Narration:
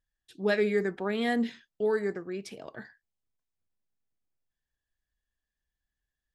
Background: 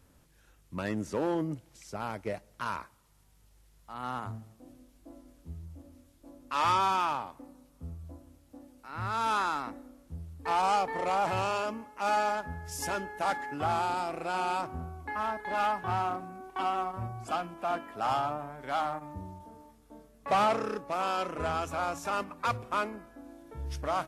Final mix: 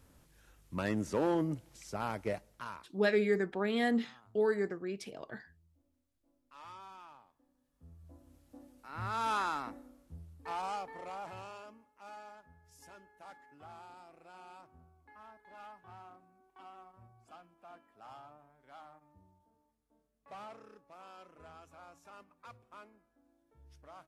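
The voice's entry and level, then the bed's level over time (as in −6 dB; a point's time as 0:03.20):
2.55 s, −2.5 dB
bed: 0:02.33 −0.5 dB
0:03.27 −24.5 dB
0:07.43 −24.5 dB
0:08.37 −4 dB
0:09.68 −4 dB
0:12.19 −22.5 dB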